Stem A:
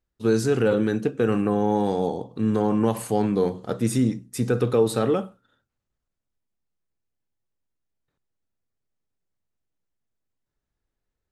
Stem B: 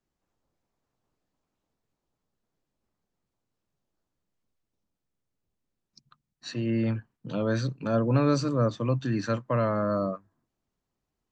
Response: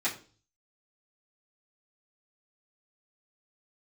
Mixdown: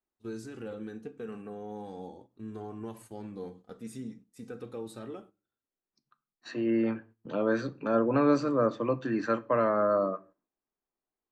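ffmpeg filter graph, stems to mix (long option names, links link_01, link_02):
-filter_complex "[0:a]flanger=delay=2.7:depth=1.9:regen=-34:speed=0.37:shape=triangular,volume=-16.5dB,asplit=2[link_01][link_02];[link_02]volume=-16dB[link_03];[1:a]acrossover=split=230 2300:gain=0.0631 1 0.224[link_04][link_05][link_06];[link_04][link_05][link_06]amix=inputs=3:normalize=0,volume=1.5dB,asplit=2[link_07][link_08];[link_08]volume=-16.5dB[link_09];[2:a]atrim=start_sample=2205[link_10];[link_03][link_09]amix=inputs=2:normalize=0[link_11];[link_11][link_10]afir=irnorm=-1:irlink=0[link_12];[link_01][link_07][link_12]amix=inputs=3:normalize=0,agate=range=-9dB:threshold=-53dB:ratio=16:detection=peak,lowshelf=frequency=100:gain=6"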